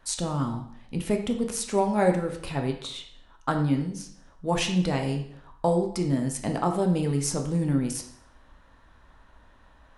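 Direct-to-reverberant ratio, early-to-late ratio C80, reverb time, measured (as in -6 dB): 3.0 dB, 11.0 dB, 0.60 s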